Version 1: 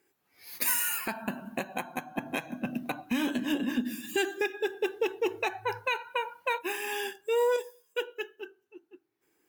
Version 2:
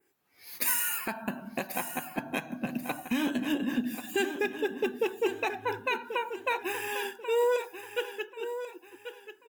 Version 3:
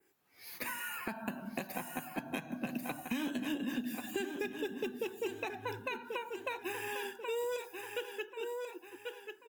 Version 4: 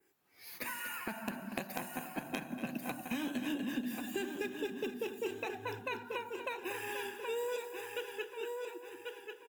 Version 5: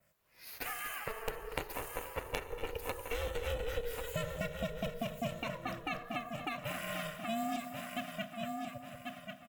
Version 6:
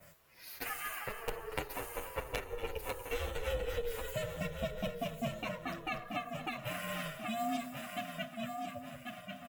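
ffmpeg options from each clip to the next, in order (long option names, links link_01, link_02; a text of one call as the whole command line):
ffmpeg -i in.wav -filter_complex "[0:a]adynamicequalizer=threshold=0.00316:dfrequency=4900:dqfactor=0.88:tfrequency=4900:tqfactor=0.88:attack=5:release=100:ratio=0.375:range=2:mode=cutabove:tftype=bell,asplit=2[link_01][link_02];[link_02]aecho=0:1:1087|2174|3261:0.299|0.0925|0.0287[link_03];[link_01][link_03]amix=inputs=2:normalize=0" out.wav
ffmpeg -i in.wav -filter_complex "[0:a]acrossover=split=250|2800[link_01][link_02][link_03];[link_01]acompressor=threshold=-41dB:ratio=4[link_04];[link_02]acompressor=threshold=-39dB:ratio=4[link_05];[link_03]acompressor=threshold=-47dB:ratio=4[link_06];[link_04][link_05][link_06]amix=inputs=3:normalize=0" out.wav
ffmpeg -i in.wav -filter_complex "[0:a]aecho=1:1:240|480|720|960|1200:0.316|0.158|0.0791|0.0395|0.0198,asplit=2[link_01][link_02];[link_02]acrusher=bits=3:mix=0:aa=0.000001,volume=-5dB[link_03];[link_01][link_03]amix=inputs=2:normalize=0,volume=-1dB" out.wav
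ffmpeg -i in.wav -af "aeval=exprs='val(0)*sin(2*PI*230*n/s)':channel_layout=same,volume=3.5dB" out.wav
ffmpeg -i in.wav -filter_complex "[0:a]areverse,acompressor=mode=upward:threshold=-42dB:ratio=2.5,areverse,asplit=2[link_01][link_02];[link_02]adelay=8.1,afreqshift=-1.6[link_03];[link_01][link_03]amix=inputs=2:normalize=1,volume=3dB" out.wav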